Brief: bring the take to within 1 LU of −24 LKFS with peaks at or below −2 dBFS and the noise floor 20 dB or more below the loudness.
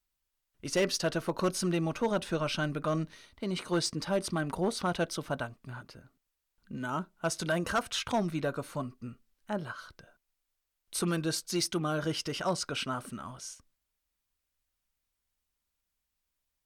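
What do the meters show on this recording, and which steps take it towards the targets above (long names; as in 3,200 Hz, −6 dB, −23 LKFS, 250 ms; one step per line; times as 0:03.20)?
share of clipped samples 0.4%; peaks flattened at −21.5 dBFS; integrated loudness −32.5 LKFS; sample peak −21.5 dBFS; target loudness −24.0 LKFS
→ clipped peaks rebuilt −21.5 dBFS
level +8.5 dB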